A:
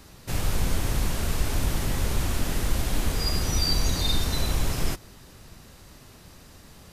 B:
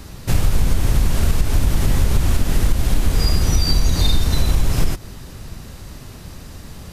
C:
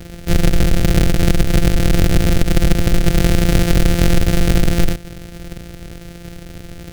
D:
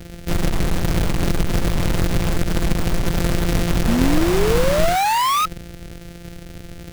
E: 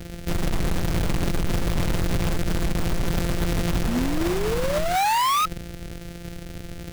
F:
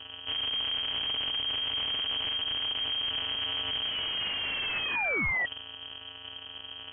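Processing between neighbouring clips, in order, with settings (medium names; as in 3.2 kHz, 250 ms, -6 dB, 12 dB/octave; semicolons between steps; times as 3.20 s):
bass shelf 210 Hz +7.5 dB; compression, threshold -19 dBFS, peak gain reduction 10 dB; trim +8.5 dB
sorted samples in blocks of 256 samples; peaking EQ 1 kHz -15 dB 0.57 oct; trim +2.5 dB
painted sound rise, 3.87–5.46 s, 220–1300 Hz -13 dBFS; in parallel at -5 dB: integer overflow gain 10.5 dB; on the sum: trim -6.5 dB
peak limiter -16 dBFS, peak gain reduction 10 dB
saturation -19.5 dBFS, distortion -18 dB; frequency inversion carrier 3.2 kHz; distance through air 480 m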